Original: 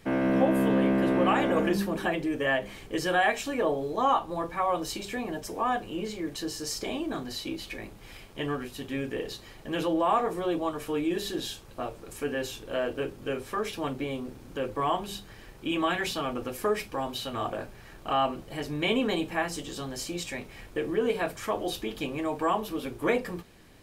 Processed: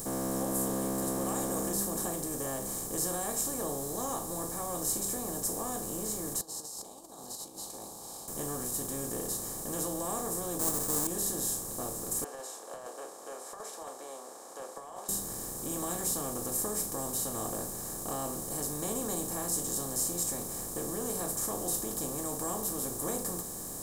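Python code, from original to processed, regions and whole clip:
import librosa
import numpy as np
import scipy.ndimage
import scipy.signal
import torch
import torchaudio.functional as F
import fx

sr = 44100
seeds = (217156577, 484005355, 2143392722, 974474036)

y = fx.chain(x, sr, fx.over_compress(threshold_db=-39.0, ratio=-0.5),
    fx.double_bandpass(hz=1900.0, octaves=2.3), at=(6.41, 8.28))
y = fx.chain(y, sr, fx.halfwave_hold(),
    fx.resample_bad(factor=4, down='filtered', up='hold'), at=(10.59, 11.07))
y = fx.chain(y, sr, fx.steep_highpass(hz=610.0, slope=36),
    fx.over_compress(threshold_db=-36.0, ratio=-1.0),
    fx.spacing_loss(db_at_10k=38), at=(12.24, 15.09))
y = fx.bin_compress(y, sr, power=0.4)
y = fx.curve_eq(y, sr, hz=(110.0, 300.0, 470.0, 770.0, 1100.0, 2600.0, 7800.0), db=(0, -8, -9, -10, -11, -24, 14))
y = y * 10.0 ** (-7.0 / 20.0)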